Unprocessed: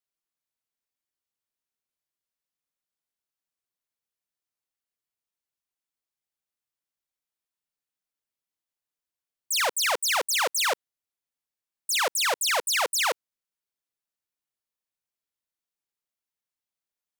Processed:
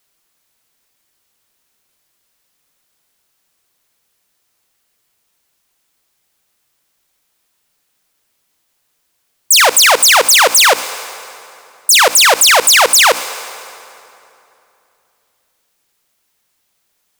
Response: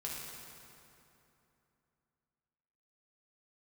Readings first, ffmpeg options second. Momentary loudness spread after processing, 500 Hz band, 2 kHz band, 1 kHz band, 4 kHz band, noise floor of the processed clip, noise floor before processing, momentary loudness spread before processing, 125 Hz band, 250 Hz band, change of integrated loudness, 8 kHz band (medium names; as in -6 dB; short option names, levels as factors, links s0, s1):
16 LU, +15.5 dB, +16.5 dB, +16.0 dB, +17.0 dB, -66 dBFS, under -85 dBFS, 5 LU, no reading, +16.5 dB, +16.5 dB, +18.5 dB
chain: -filter_complex "[0:a]bandreject=f=60:t=h:w=6,bandreject=f=120:t=h:w=6,bandreject=f=180:t=h:w=6,bandreject=f=240:t=h:w=6,bandreject=f=300:t=h:w=6,asplit=2[s0][s1];[1:a]atrim=start_sample=2205,highshelf=f=4700:g=8[s2];[s1][s2]afir=irnorm=-1:irlink=0,volume=0.0841[s3];[s0][s3]amix=inputs=2:normalize=0,alimiter=level_in=20:limit=0.891:release=50:level=0:latency=1,volume=0.891"